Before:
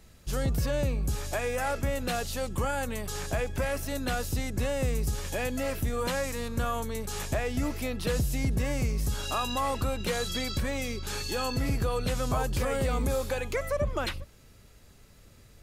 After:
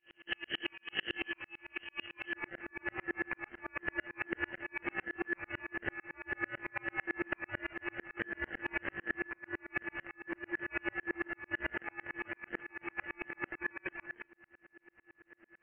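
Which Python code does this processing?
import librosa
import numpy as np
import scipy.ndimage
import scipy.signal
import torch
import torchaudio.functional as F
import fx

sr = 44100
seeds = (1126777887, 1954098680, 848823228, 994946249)

y = np.r_[np.sort(x[:len(x) // 32 * 32].reshape(-1, 32), axis=1).ravel(), x[len(x) // 32 * 32:]]
y = fx.chorus_voices(y, sr, voices=6, hz=0.4, base_ms=25, depth_ms=2.1, mix_pct=40)
y = fx.highpass(y, sr, hz=fx.steps((0.0, 270.0), (2.33, 1100.0)), slope=12)
y = fx.over_compress(y, sr, threshold_db=-41.0, ratio=-0.5)
y = fx.freq_invert(y, sr, carrier_hz=3100)
y = fx.tremolo_decay(y, sr, direction='swelling', hz=9.0, depth_db=39)
y = F.gain(torch.from_numpy(y), 12.0).numpy()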